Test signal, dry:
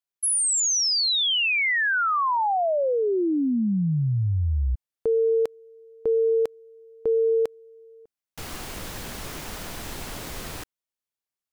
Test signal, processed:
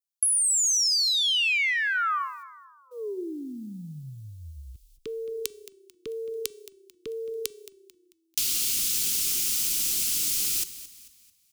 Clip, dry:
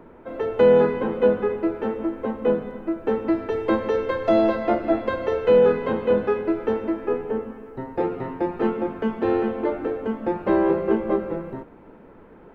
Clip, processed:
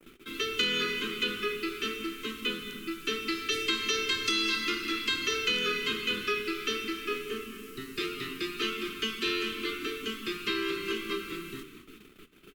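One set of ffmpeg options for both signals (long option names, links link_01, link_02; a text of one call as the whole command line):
ffmpeg -i in.wav -filter_complex "[0:a]asuperstop=centerf=700:order=12:qfactor=0.95,aexciter=amount=8.9:drive=7.4:freq=2600,acompressor=threshold=-14dB:ratio=6:attack=1.6:release=141:knee=6,adynamicequalizer=threshold=0.01:dfrequency=3700:dqfactor=2:tfrequency=3700:tqfactor=2:attack=5:release=100:ratio=0.375:range=2.5:mode=cutabove:tftype=bell,agate=range=-24dB:threshold=-46dB:ratio=16:release=159:detection=rms,acrossover=split=81|540[link_01][link_02][link_03];[link_01]acompressor=threshold=-50dB:ratio=4[link_04];[link_02]acompressor=threshold=-37dB:ratio=4[link_05];[link_03]acompressor=threshold=-25dB:ratio=4[link_06];[link_04][link_05][link_06]amix=inputs=3:normalize=0,equalizer=frequency=80:width=0.3:gain=-8,bandreject=frequency=386.3:width_type=h:width=4,bandreject=frequency=772.6:width_type=h:width=4,bandreject=frequency=1158.9:width_type=h:width=4,bandreject=frequency=1545.2:width_type=h:width=4,bandreject=frequency=1931.5:width_type=h:width=4,bandreject=frequency=2317.8:width_type=h:width=4,bandreject=frequency=2704.1:width_type=h:width=4,bandreject=frequency=3090.4:width_type=h:width=4,bandreject=frequency=3476.7:width_type=h:width=4,bandreject=frequency=3863:width_type=h:width=4,bandreject=frequency=4249.3:width_type=h:width=4,bandreject=frequency=4635.6:width_type=h:width=4,bandreject=frequency=5021.9:width_type=h:width=4,bandreject=frequency=5408.2:width_type=h:width=4,bandreject=frequency=5794.5:width_type=h:width=4,bandreject=frequency=6180.8:width_type=h:width=4,bandreject=frequency=6567.1:width_type=h:width=4,bandreject=frequency=6953.4:width_type=h:width=4,bandreject=frequency=7339.7:width_type=h:width=4,bandreject=frequency=7726:width_type=h:width=4,bandreject=frequency=8112.3:width_type=h:width=4,bandreject=frequency=8498.6:width_type=h:width=4,bandreject=frequency=8884.9:width_type=h:width=4,bandreject=frequency=9271.2:width_type=h:width=4,bandreject=frequency=9657.5:width_type=h:width=4,bandreject=frequency=10043.8:width_type=h:width=4,asplit=5[link_07][link_08][link_09][link_10][link_11];[link_08]adelay=221,afreqshift=-31,volume=-15.5dB[link_12];[link_09]adelay=442,afreqshift=-62,volume=-23.5dB[link_13];[link_10]adelay=663,afreqshift=-93,volume=-31.4dB[link_14];[link_11]adelay=884,afreqshift=-124,volume=-39.4dB[link_15];[link_07][link_12][link_13][link_14][link_15]amix=inputs=5:normalize=0,volume=1dB" out.wav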